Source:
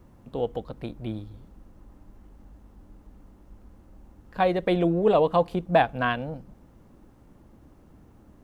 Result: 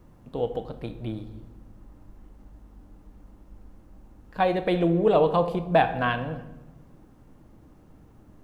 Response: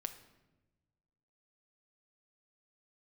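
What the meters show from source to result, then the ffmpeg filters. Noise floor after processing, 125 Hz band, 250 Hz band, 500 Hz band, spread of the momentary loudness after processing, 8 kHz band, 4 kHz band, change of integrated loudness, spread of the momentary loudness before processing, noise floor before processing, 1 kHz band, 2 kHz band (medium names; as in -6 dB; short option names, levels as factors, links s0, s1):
-54 dBFS, +1.5 dB, +0.5 dB, 0.0 dB, 18 LU, no reading, 0.0 dB, +0.5 dB, 17 LU, -55 dBFS, +0.5 dB, 0.0 dB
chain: -filter_complex "[1:a]atrim=start_sample=2205[s0];[0:a][s0]afir=irnorm=-1:irlink=0,volume=1.26"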